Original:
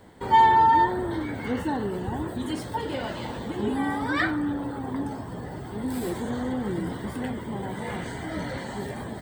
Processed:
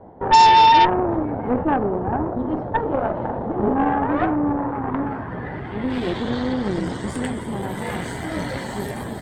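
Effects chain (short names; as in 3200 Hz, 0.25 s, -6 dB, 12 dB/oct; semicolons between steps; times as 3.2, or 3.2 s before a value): low-pass sweep 750 Hz -> 13000 Hz, 4.33–7.74; added harmonics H 5 -20 dB, 8 -16 dB, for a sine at -6 dBFS; gain +1.5 dB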